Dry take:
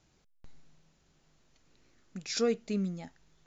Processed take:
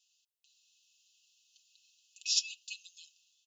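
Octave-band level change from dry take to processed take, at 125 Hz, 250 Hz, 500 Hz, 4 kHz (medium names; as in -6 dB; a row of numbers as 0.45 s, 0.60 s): under -40 dB, under -40 dB, under -40 dB, +7.0 dB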